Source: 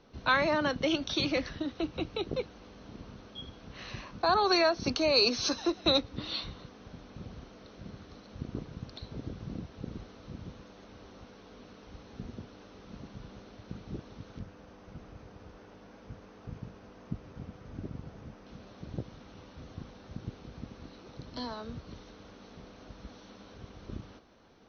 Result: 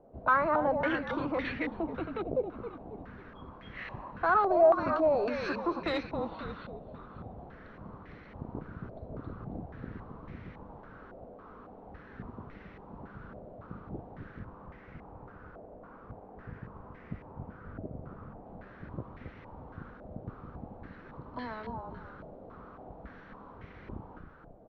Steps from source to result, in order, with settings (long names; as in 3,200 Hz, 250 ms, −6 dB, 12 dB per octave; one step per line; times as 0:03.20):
echo with shifted repeats 271 ms, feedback 45%, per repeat −38 Hz, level −7 dB
soft clipping −23 dBFS, distortion −13 dB
low-pass on a step sequencer 3.6 Hz 660–2,000 Hz
level −2 dB